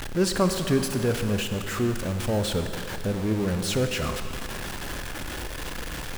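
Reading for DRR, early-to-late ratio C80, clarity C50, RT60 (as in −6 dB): 6.5 dB, 8.0 dB, 7.0 dB, 2.7 s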